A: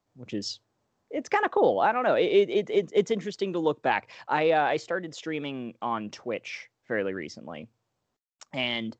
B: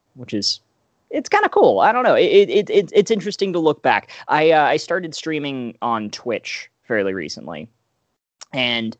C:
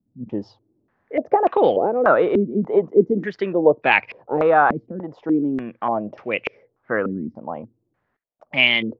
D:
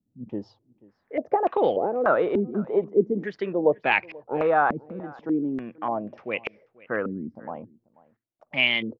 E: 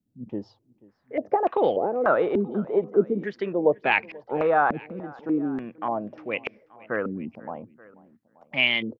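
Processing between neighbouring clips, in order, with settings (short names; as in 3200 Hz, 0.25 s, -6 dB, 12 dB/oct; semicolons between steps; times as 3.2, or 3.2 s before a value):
dynamic EQ 5100 Hz, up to +7 dB, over -53 dBFS, Q 2.1; gain +9 dB
stepped low-pass 3.4 Hz 230–2500 Hz; gain -4 dB
echo 0.487 s -23 dB; gain -5.5 dB
echo 0.88 s -23.5 dB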